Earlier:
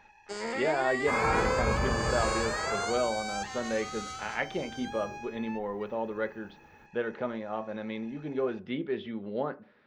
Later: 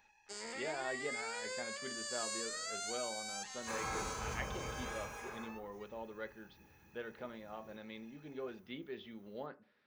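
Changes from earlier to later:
second sound: entry +2.60 s; master: add pre-emphasis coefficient 0.8

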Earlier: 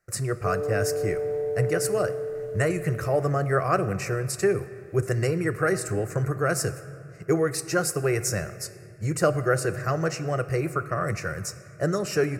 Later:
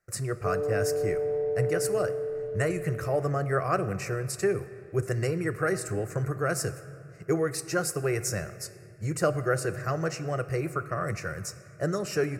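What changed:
speech -3.5 dB; background: add air absorption 210 m

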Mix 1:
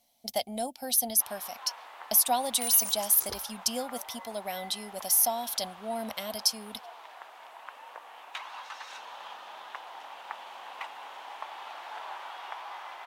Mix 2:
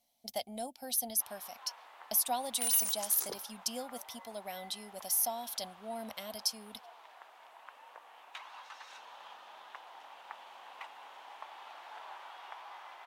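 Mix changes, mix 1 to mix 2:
speech -7.0 dB; first sound -7.5 dB; second sound: add HPF 170 Hz 24 dB/oct

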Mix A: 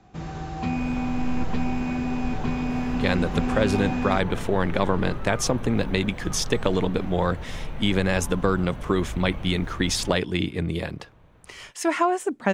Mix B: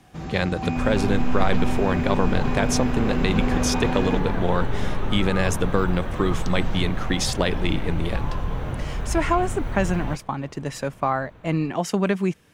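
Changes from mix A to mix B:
speech: entry -2.70 s; second sound +7.0 dB

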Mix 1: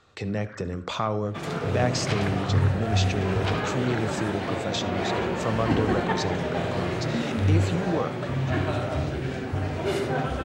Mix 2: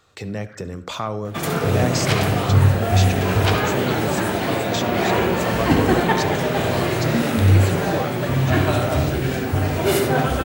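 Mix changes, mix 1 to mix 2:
first sound: add HPF 1400 Hz; second sound +7.5 dB; master: remove air absorption 74 m

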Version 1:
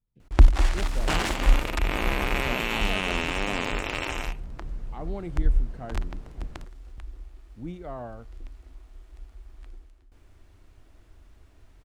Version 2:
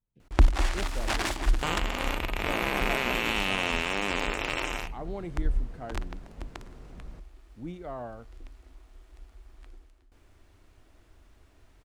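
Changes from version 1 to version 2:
second sound: entry +0.55 s; master: add low shelf 170 Hz -5.5 dB

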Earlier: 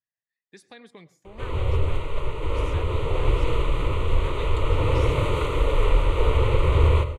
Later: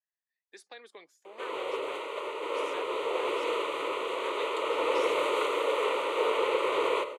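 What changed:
speech: send off; master: add HPF 380 Hz 24 dB/oct

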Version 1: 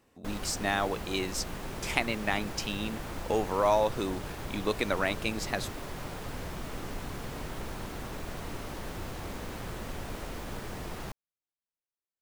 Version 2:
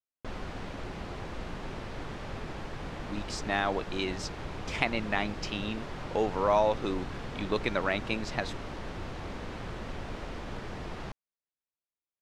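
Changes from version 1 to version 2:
speech: entry +2.85 s; master: add LPF 4600 Hz 12 dB/oct

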